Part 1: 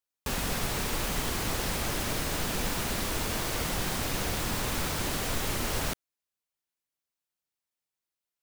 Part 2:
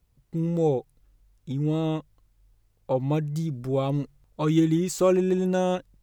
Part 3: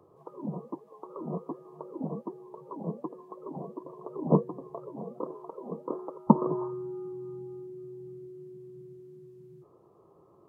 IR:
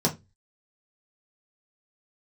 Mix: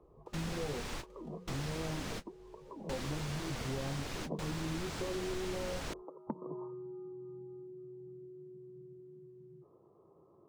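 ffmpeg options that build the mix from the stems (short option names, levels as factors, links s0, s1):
-filter_complex "[0:a]acrossover=split=8200[s0][s1];[s1]acompressor=threshold=0.00224:ratio=4:attack=1:release=60[s2];[s0][s2]amix=inputs=2:normalize=0,volume=0.841[s3];[1:a]alimiter=limit=0.133:level=0:latency=1,flanger=delay=18.5:depth=3.6:speed=0.39,volume=1.33,asplit=2[s4][s5];[2:a]bandreject=f=60:t=h:w=6,bandreject=f=120:t=h:w=6,bandreject=f=180:t=h:w=6,volume=0.708[s6];[s5]apad=whole_len=371427[s7];[s3][s7]sidechaingate=range=0.0224:threshold=0.00251:ratio=16:detection=peak[s8];[s4][s6]amix=inputs=2:normalize=0,lowpass=f=1000:p=1,acompressor=threshold=0.0398:ratio=4,volume=1[s9];[s8][s9]amix=inputs=2:normalize=0,acompressor=threshold=0.00282:ratio=1.5"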